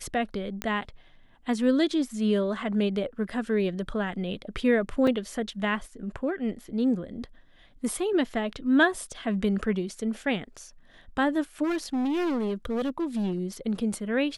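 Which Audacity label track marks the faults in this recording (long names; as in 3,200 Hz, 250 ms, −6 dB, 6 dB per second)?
0.620000	0.620000	click −14 dBFS
5.070000	5.070000	drop-out 3.4 ms
11.630000	13.390000	clipping −24.5 dBFS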